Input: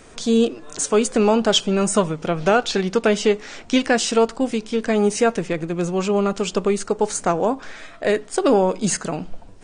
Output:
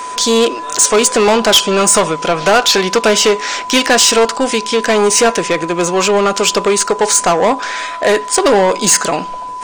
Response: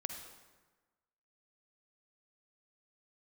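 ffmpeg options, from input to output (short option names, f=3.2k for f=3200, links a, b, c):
-filter_complex "[0:a]asplit=2[a][b];[b]highpass=f=720:p=1,volume=20dB,asoftclip=type=tanh:threshold=-5dB[c];[a][c]amix=inputs=2:normalize=0,lowpass=f=6.7k:p=1,volume=-6dB,aeval=exprs='val(0)+0.0562*sin(2*PI*1000*n/s)':c=same,bass=f=250:g=-4,treble=f=4k:g=5,volume=2.5dB"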